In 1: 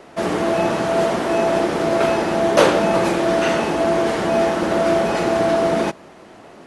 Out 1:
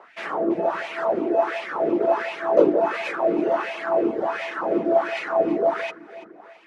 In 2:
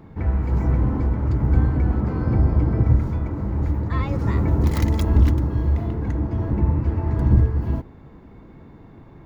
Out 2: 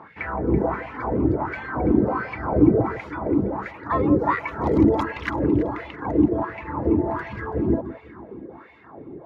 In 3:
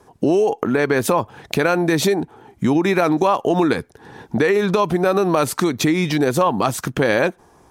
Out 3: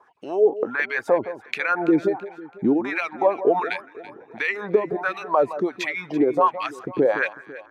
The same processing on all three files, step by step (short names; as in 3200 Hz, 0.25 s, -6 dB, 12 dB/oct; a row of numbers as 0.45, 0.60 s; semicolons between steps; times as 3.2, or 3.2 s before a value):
wah 1.4 Hz 330–2400 Hz, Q 2.7; reverb removal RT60 1.1 s; echo with dull and thin repeats by turns 0.166 s, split 1400 Hz, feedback 62%, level -13 dB; match loudness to -23 LUFS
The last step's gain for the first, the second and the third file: +3.5, +16.5, +3.5 dB